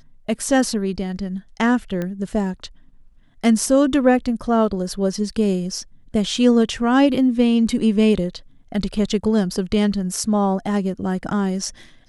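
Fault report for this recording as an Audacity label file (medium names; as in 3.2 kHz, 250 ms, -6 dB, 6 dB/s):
2.020000	2.020000	pop -14 dBFS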